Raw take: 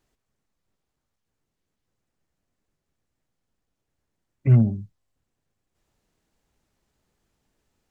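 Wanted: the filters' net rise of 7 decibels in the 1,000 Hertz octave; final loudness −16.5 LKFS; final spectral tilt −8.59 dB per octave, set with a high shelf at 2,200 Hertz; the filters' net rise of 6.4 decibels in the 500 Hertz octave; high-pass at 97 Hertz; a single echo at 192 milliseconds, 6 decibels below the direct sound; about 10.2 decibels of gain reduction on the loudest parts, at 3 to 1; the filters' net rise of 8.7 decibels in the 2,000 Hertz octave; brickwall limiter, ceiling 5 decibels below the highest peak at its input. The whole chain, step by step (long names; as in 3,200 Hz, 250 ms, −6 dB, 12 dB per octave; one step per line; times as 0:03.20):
high-pass filter 97 Hz
parametric band 500 Hz +8 dB
parametric band 1,000 Hz +4 dB
parametric band 2,000 Hz +6 dB
high-shelf EQ 2,200 Hz +5 dB
downward compressor 3 to 1, threshold −25 dBFS
brickwall limiter −20 dBFS
single-tap delay 192 ms −6 dB
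level +15.5 dB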